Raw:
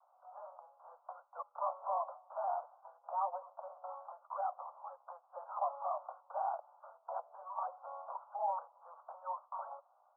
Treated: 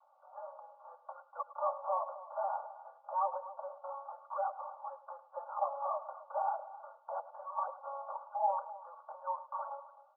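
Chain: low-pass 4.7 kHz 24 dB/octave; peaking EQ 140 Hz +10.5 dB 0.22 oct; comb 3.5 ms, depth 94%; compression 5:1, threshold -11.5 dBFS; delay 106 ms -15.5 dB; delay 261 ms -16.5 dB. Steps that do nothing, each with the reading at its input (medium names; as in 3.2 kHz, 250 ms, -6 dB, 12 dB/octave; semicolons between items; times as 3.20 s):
low-pass 4.7 kHz: input has nothing above 1.5 kHz; peaking EQ 140 Hz: input has nothing below 480 Hz; compression, threshold -11.5 dBFS: peak at its input -20.5 dBFS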